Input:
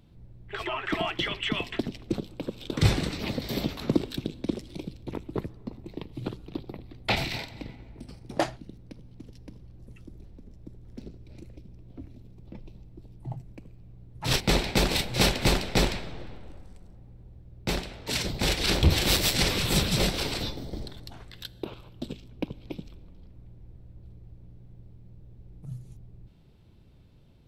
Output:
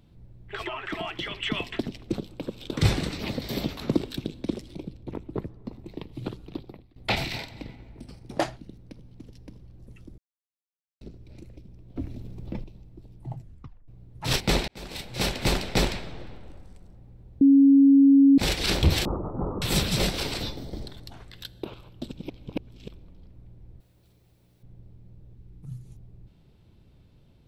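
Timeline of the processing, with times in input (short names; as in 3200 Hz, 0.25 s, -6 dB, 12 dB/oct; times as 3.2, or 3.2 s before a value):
0.68–1.41 compressor 1.5:1, threshold -35 dBFS
4.74–5.65 high shelf 2000 Hz -9 dB
6.52–6.96 fade out, to -21 dB
10.18–11.01 mute
11.96–12.64 gain +9.5 dB
13.39 tape stop 0.49 s
14.68–15.62 fade in
17.41–18.38 bleep 276 Hz -12 dBFS
19.05–19.62 rippled Chebyshev low-pass 1300 Hz, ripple 3 dB
22.12–22.88 reverse
23.8–24.63 tilt +4 dB/oct
25.34–25.86 bell 620 Hz -10 dB 0.57 oct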